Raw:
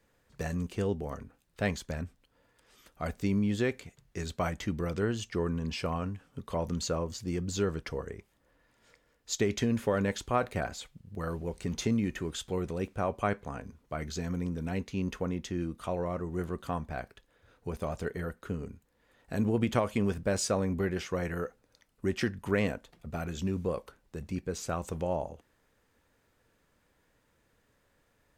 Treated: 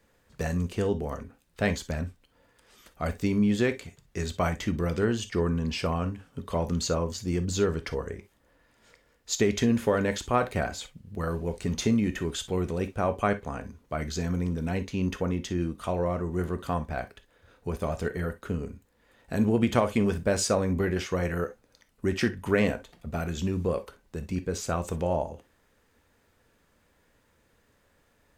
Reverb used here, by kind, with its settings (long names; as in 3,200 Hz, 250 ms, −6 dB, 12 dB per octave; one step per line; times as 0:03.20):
reverb whose tail is shaped and stops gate 80 ms flat, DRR 10.5 dB
level +4 dB